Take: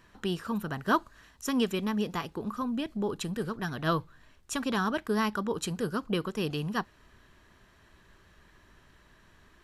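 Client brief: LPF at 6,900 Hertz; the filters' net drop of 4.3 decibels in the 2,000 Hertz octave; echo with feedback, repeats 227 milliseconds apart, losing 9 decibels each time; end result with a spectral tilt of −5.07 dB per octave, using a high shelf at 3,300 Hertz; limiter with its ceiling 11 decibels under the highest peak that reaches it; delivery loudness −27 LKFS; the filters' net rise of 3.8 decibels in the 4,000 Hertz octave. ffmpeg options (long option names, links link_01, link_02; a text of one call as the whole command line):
ffmpeg -i in.wav -af "lowpass=6900,equalizer=frequency=2000:width_type=o:gain=-9,highshelf=frequency=3300:gain=4.5,equalizer=frequency=4000:width_type=o:gain=6,alimiter=level_in=1.5dB:limit=-24dB:level=0:latency=1,volume=-1.5dB,aecho=1:1:227|454|681|908:0.355|0.124|0.0435|0.0152,volume=8dB" out.wav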